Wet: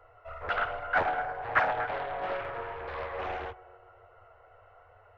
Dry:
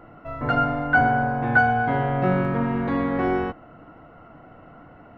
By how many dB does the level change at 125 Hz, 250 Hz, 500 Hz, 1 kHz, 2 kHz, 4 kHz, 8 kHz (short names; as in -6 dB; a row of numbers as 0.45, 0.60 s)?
-22.0 dB, -26.0 dB, -8.5 dB, -8.5 dB, -9.5 dB, -3.0 dB, n/a